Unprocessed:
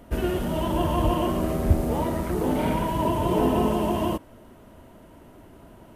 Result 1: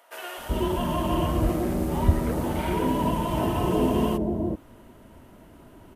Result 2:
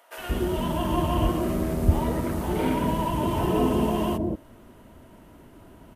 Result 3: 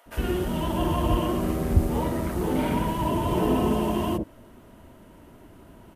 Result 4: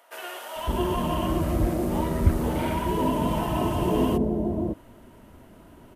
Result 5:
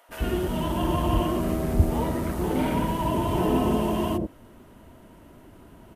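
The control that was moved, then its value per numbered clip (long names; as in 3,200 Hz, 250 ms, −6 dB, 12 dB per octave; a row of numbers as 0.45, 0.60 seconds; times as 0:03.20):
multiband delay without the direct sound, delay time: 380, 180, 60, 560, 90 milliseconds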